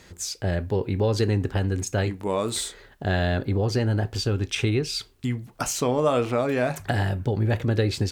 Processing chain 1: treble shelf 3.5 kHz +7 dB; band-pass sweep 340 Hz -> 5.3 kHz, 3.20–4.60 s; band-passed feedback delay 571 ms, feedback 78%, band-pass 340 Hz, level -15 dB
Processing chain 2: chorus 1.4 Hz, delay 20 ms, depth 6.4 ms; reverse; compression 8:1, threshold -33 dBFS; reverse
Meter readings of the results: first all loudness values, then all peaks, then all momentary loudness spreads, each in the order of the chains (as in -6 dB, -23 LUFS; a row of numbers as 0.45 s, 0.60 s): -33.5 LUFS, -37.0 LUFS; -15.0 dBFS, -23.5 dBFS; 16 LU, 2 LU